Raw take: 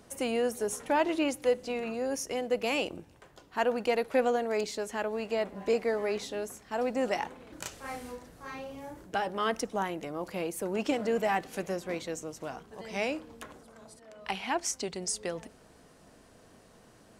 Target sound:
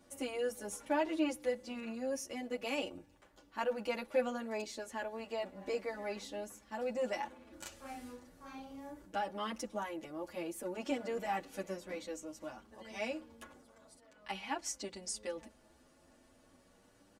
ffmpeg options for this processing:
-filter_complex "[0:a]aecho=1:1:3.5:0.52,asplit=2[a][b];[b]adelay=8.4,afreqshift=0.36[c];[a][c]amix=inputs=2:normalize=1,volume=-5.5dB"

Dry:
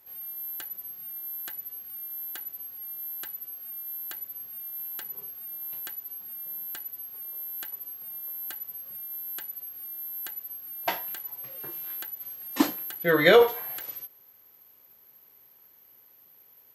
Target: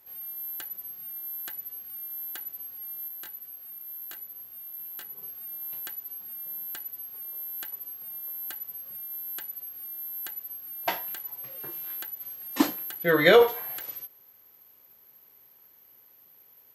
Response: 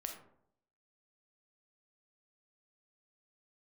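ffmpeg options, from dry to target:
-filter_complex "[0:a]asettb=1/sr,asplit=3[a][b][c];[a]atrim=end=3.084[d];[b]atrim=start=3.08:end=5.23,asetpts=PTS-STARTPTS,afade=t=in:d=0.004:c=qsin,afade=t=out:st=2.146:d=0.004:c=qsin,flanger=delay=18.5:depth=3.6:speed=2.1[e];[c]atrim=start=5.226[f];[d][e]acrossfade=d=0.004:c1=hsin:c2=qsin[g];[g][f]acrossfade=d=0.004:c1=qsin:c2=hsin"

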